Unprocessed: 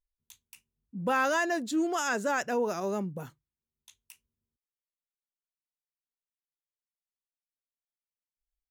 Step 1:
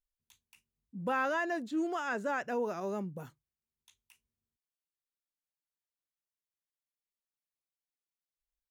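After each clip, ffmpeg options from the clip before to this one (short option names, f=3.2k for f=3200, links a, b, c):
-filter_complex "[0:a]acrossover=split=3300[a][b];[b]acompressor=threshold=-52dB:ratio=4:attack=1:release=60[c];[a][c]amix=inputs=2:normalize=0,volume=-4.5dB"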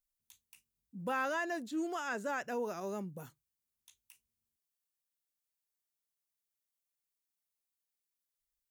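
-af "highshelf=f=5.3k:g=11,volume=-3.5dB"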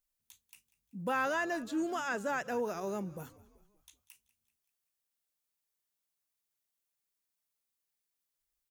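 -filter_complex "[0:a]asplit=5[a][b][c][d][e];[b]adelay=191,afreqshift=-55,volume=-20dB[f];[c]adelay=382,afreqshift=-110,volume=-25.2dB[g];[d]adelay=573,afreqshift=-165,volume=-30.4dB[h];[e]adelay=764,afreqshift=-220,volume=-35.6dB[i];[a][f][g][h][i]amix=inputs=5:normalize=0,volume=2.5dB"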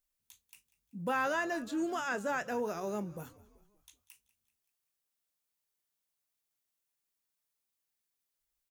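-filter_complex "[0:a]asplit=2[a][b];[b]adelay=24,volume=-13.5dB[c];[a][c]amix=inputs=2:normalize=0"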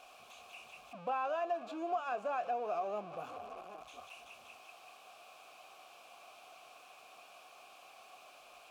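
-filter_complex "[0:a]aeval=exprs='val(0)+0.5*0.0141*sgn(val(0))':c=same,asplit=3[a][b][c];[a]bandpass=f=730:t=q:w=8,volume=0dB[d];[b]bandpass=f=1.09k:t=q:w=8,volume=-6dB[e];[c]bandpass=f=2.44k:t=q:w=8,volume=-9dB[f];[d][e][f]amix=inputs=3:normalize=0,acompressor=threshold=-43dB:ratio=2.5,volume=9dB"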